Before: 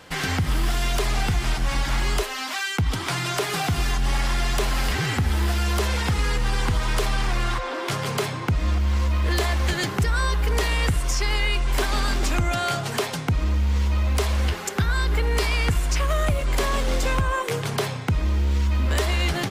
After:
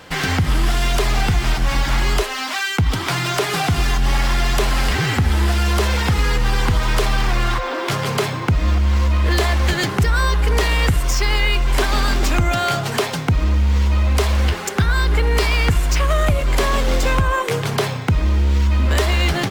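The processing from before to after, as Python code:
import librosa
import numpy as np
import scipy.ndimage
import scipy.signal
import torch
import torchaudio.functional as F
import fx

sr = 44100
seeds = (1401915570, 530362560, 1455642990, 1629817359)

y = np.interp(np.arange(len(x)), np.arange(len(x))[::2], x[::2])
y = F.gain(torch.from_numpy(y), 5.5).numpy()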